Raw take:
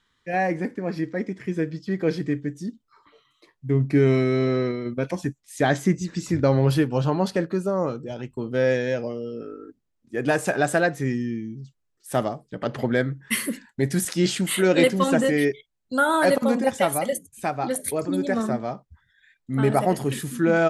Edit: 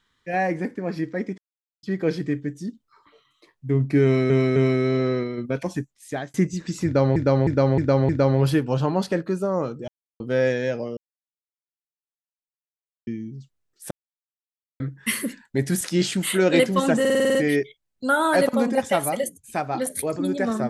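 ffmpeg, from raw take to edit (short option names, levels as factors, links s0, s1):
-filter_complex "[0:a]asplit=23[s0][s1][s2][s3][s4][s5][s6][s7][s8][s9][s10][s11][s12][s13][s14][s15][s16][s17][s18][s19][s20][s21][s22];[s0]atrim=end=1.38,asetpts=PTS-STARTPTS,afade=t=out:st=1.376:d=0.004:c=hsin[s23];[s1]atrim=start=1.38:end=1.83,asetpts=PTS-STARTPTS,volume=0[s24];[s2]atrim=start=1.83:end=4.302,asetpts=PTS-STARTPTS,afade=t=in:d=0.004:c=hsin[s25];[s3]atrim=start=4.038:end=4.302[s26];[s4]atrim=start=4.038:end=5.82,asetpts=PTS-STARTPTS,afade=t=out:st=1.082:d=0.7:c=qsin[s27];[s5]atrim=start=5.82:end=6.642,asetpts=PTS-STARTPTS,afade=t=in:d=0.004:c=hsin[s28];[s6]atrim=start=6.328:end=6.642[s29];[s7]atrim=start=6.328:end=6.642[s30];[s8]atrim=start=6.328:end=6.642[s31];[s9]atrim=start=6.328:end=8.12,asetpts=PTS-STARTPTS,afade=t=out:st=1.788:d=0.004:c=hsin[s32];[s10]atrim=start=8.12:end=8.44,asetpts=PTS-STARTPTS,volume=0[s33];[s11]atrim=start=8.44:end=9.21,asetpts=PTS-STARTPTS,afade=t=in:d=0.004:c=hsin,afade=t=out:st=0.766:d=0.004:c=hsin[s34];[s12]atrim=start=9.21:end=11.31,asetpts=PTS-STARTPTS,volume=0[s35];[s13]atrim=start=11.31:end=12.15,asetpts=PTS-STARTPTS,afade=t=in:d=0.004:c=hsin,afade=t=out:st=0.836:d=0.004:c=hsin[s36];[s14]atrim=start=12.15:end=13.04,asetpts=PTS-STARTPTS,volume=0[s37];[s15]atrim=start=13.04:end=15.292,asetpts=PTS-STARTPTS,afade=t=in:d=0.004:c=hsin[s38];[s16]atrim=start=15.238:end=15.292[s39];[s17]atrim=start=15.238:end=15.292[s40];[s18]atrim=start=15.238:end=15.292[s41];[s19]atrim=start=15.238:end=15.292[s42];[s20]atrim=start=15.238:end=15.292[s43];[s21]atrim=start=15.238:end=15.292[s44];[s22]atrim=start=15.238[s45];[s23][s24][s25]concat=n=3:v=0:a=1[s46];[s46][s26]acrossfade=d=0.004:c1=hsin:c2=hsin[s47];[s27][s28]concat=n=2:v=0:a=1[s48];[s47][s48]acrossfade=d=0.004:c1=hsin:c2=hsin[s49];[s49][s29]acrossfade=d=0.004:c1=hsin:c2=hsin[s50];[s50][s30]acrossfade=d=0.004:c1=hsin:c2=hsin[s51];[s51][s31]acrossfade=d=0.004:c1=hsin:c2=hsin[s52];[s32][s33][s34][s35][s36][s37][s38]concat=n=7:v=0:a=1[s53];[s52][s53]acrossfade=d=0.004:c1=hsin:c2=hsin[s54];[s54][s39]acrossfade=d=0.004:c1=hsin:c2=hsin[s55];[s55][s40]acrossfade=d=0.004:c1=hsin:c2=hsin[s56];[s56][s41]acrossfade=d=0.004:c1=hsin:c2=hsin[s57];[s57][s42]acrossfade=d=0.004:c1=hsin:c2=hsin[s58];[s58][s43]acrossfade=d=0.004:c1=hsin:c2=hsin[s59];[s59][s44]acrossfade=d=0.004:c1=hsin:c2=hsin[s60];[s60][s45]acrossfade=d=0.004:c1=hsin:c2=hsin"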